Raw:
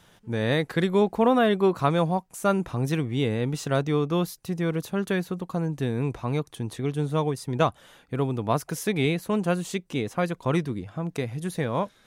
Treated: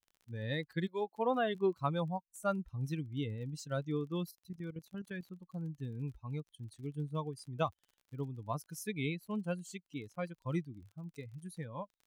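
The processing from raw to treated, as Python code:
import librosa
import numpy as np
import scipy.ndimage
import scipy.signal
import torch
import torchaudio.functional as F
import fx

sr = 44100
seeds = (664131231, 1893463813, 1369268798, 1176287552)

y = fx.bin_expand(x, sr, power=2.0)
y = fx.highpass(y, sr, hz=fx.line((0.86, 590.0), (1.54, 250.0)), slope=12, at=(0.86, 1.54), fade=0.02)
y = fx.level_steps(y, sr, step_db=11, at=(4.31, 5.24))
y = fx.dmg_crackle(y, sr, seeds[0], per_s=38.0, level_db=-44.0)
y = y * librosa.db_to_amplitude(-7.5)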